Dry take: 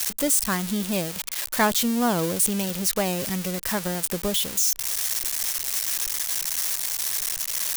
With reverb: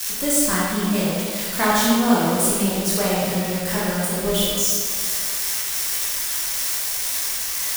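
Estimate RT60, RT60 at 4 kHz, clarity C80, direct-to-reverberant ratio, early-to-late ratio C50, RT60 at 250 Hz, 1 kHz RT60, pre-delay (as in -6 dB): 2.1 s, 1.4 s, -0.5 dB, -8.0 dB, -2.5 dB, 2.1 s, 2.1 s, 14 ms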